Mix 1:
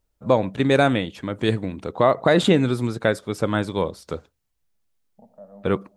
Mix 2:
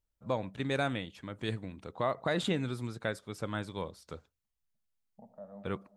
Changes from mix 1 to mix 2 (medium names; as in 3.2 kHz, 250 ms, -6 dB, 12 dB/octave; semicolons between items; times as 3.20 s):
first voice -11.0 dB; master: add peaking EQ 390 Hz -5 dB 2.2 oct